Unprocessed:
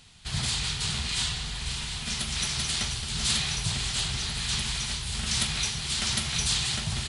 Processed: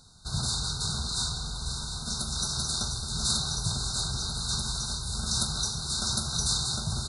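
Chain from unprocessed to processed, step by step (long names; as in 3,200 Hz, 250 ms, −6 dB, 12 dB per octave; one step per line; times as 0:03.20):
linear-phase brick-wall band-stop 1,600–3,600 Hz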